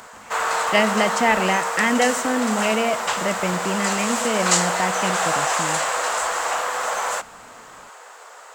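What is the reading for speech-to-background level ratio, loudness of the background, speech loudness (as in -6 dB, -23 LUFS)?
-0.5 dB, -22.5 LUFS, -23.0 LUFS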